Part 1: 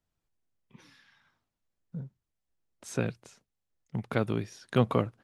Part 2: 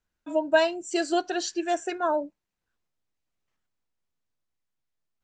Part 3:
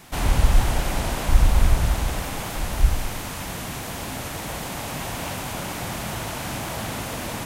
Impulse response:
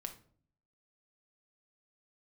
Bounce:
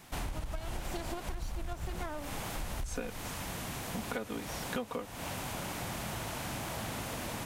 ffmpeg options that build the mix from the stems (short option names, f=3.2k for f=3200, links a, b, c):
-filter_complex "[0:a]equalizer=f=150:t=o:w=1.3:g=-9,aecho=1:1:4.1:0.96,volume=1dB[a];[1:a]dynaudnorm=f=140:g=11:m=12dB,aeval=exprs='max(val(0),0)':c=same,volume=-10.5dB[b];[2:a]asoftclip=type=tanh:threshold=-4.5dB,volume=-7.5dB[c];[b][c]amix=inputs=2:normalize=0,acompressor=threshold=-27dB:ratio=6,volume=0dB[d];[a][d]amix=inputs=2:normalize=0,acompressor=threshold=-33dB:ratio=12"